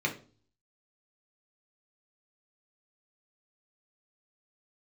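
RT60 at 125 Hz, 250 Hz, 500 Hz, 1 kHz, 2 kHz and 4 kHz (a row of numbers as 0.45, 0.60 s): 0.70, 0.55, 0.45, 0.35, 0.30, 0.35 s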